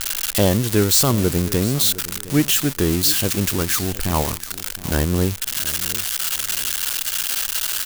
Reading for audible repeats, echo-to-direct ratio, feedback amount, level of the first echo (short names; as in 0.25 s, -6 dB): 2, -16.5 dB, 28%, -17.0 dB